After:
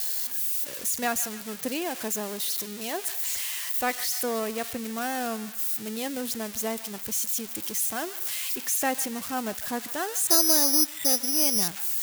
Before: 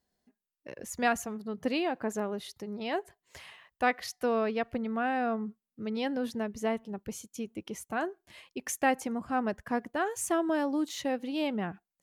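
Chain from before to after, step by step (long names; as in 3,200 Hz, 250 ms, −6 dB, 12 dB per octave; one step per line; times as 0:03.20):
spike at every zero crossing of −21.5 dBFS
feedback echo with a band-pass in the loop 147 ms, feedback 67%, band-pass 2,100 Hz, level −13.5 dB
0:10.27–0:11.68: bad sample-rate conversion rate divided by 8×, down filtered, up zero stuff
level −1 dB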